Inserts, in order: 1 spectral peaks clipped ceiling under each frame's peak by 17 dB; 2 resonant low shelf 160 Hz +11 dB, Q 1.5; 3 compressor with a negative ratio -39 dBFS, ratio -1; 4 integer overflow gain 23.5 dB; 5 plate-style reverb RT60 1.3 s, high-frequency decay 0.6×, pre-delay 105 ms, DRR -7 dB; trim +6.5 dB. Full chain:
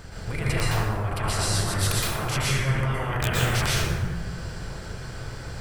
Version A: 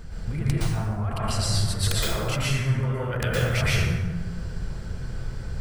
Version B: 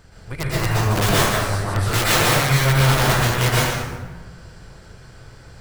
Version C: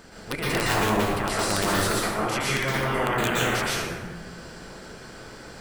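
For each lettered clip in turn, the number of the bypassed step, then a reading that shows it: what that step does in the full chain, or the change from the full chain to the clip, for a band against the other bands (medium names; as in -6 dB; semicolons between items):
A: 1, 1 kHz band -3.5 dB; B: 3, 8 kHz band -2.0 dB; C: 2, momentary loudness spread change +6 LU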